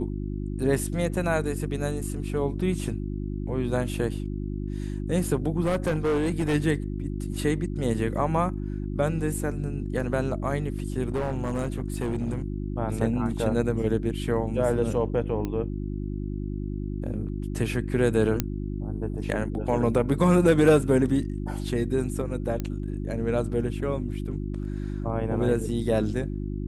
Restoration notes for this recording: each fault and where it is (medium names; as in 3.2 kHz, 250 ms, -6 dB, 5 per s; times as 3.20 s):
hum 50 Hz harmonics 7 -31 dBFS
5.62–6.55 s: clipped -20.5 dBFS
11.12–12.44 s: clipped -23 dBFS
15.45 s: pop -18 dBFS
18.40 s: pop -8 dBFS
22.60 s: pop -17 dBFS